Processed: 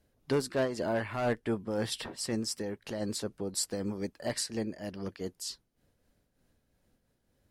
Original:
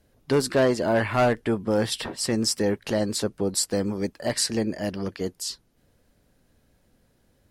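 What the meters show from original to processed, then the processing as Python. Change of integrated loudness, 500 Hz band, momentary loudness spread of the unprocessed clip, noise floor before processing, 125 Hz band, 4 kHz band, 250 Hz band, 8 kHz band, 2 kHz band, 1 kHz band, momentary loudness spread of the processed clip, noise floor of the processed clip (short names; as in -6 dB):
-9.0 dB, -9.0 dB, 9 LU, -65 dBFS, -9.0 dB, -9.0 dB, -9.0 dB, -8.5 dB, -9.0 dB, -10.0 dB, 8 LU, -76 dBFS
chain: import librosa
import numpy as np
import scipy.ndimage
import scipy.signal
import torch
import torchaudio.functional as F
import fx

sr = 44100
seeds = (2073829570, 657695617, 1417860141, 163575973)

y = fx.am_noise(x, sr, seeds[0], hz=5.7, depth_pct=65)
y = y * 10.0 ** (-5.5 / 20.0)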